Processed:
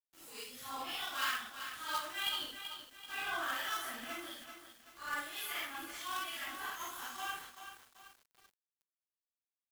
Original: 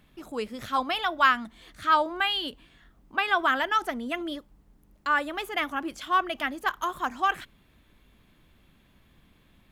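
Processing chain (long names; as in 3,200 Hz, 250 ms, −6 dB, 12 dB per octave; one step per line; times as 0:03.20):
random phases in long frames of 200 ms
first-order pre-emphasis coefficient 0.9
log-companded quantiser 4 bits
two-band tremolo in antiphase 1.2 Hz, depth 50%, crossover 1,600 Hz
far-end echo of a speakerphone 120 ms, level −14 dB
feedback echo at a low word length 384 ms, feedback 55%, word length 9 bits, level −8.5 dB
level +1.5 dB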